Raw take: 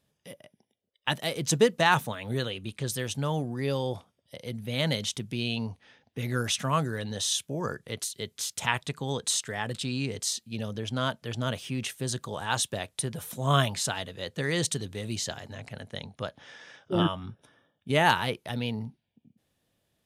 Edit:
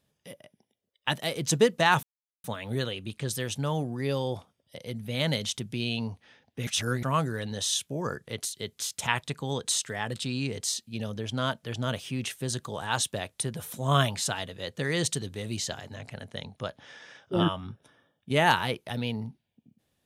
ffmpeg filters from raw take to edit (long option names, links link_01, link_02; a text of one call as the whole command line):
ffmpeg -i in.wav -filter_complex "[0:a]asplit=4[link_01][link_02][link_03][link_04];[link_01]atrim=end=2.03,asetpts=PTS-STARTPTS,afade=type=out:start_time=2.026:duration=0.004:curve=hsin,apad=pad_dur=0.41[link_05];[link_02]atrim=start=2.03:end=6.262,asetpts=PTS-STARTPTS,afade=type=in:duration=0.004:curve=hsin[link_06];[link_03]atrim=start=6.258:end=6.622,asetpts=PTS-STARTPTS,areverse[link_07];[link_04]atrim=start=6.618[link_08];[link_05][link_06]concat=n=2:v=0:a=1[link_09];[link_09][link_07]acrossfade=duration=0.004:curve1=hsin:curve2=hsin[link_10];[link_10][link_08]acrossfade=duration=0.004:curve1=hsin:curve2=hsin" out.wav